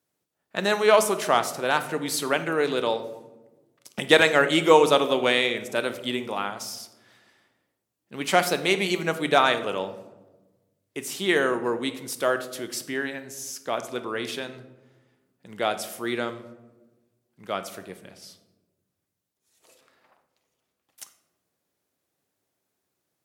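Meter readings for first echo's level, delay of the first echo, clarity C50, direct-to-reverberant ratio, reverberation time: no echo, no echo, 12.5 dB, 9.5 dB, 1.1 s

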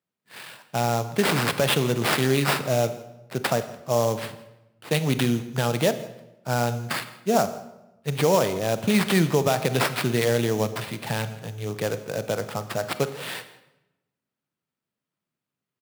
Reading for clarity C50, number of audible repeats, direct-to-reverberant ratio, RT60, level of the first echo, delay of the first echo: 12.5 dB, 1, 11.0 dB, 0.95 s, -22.0 dB, 165 ms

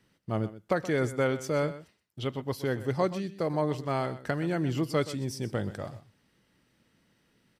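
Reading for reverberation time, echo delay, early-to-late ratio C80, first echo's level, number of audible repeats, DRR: no reverb, 125 ms, no reverb, -15.0 dB, 1, no reverb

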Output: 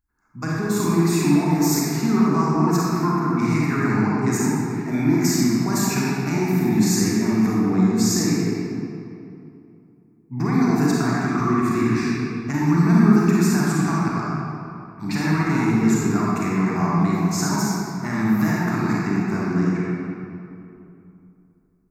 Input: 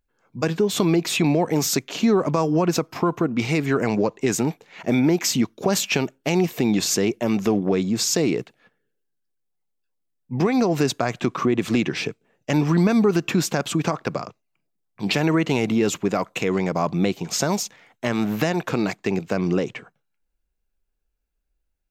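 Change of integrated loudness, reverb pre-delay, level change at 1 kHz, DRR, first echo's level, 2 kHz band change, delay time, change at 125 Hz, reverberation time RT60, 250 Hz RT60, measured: +2.0 dB, 32 ms, +3.0 dB, -6.5 dB, no echo, +1.0 dB, no echo, +4.5 dB, 2.7 s, 3.0 s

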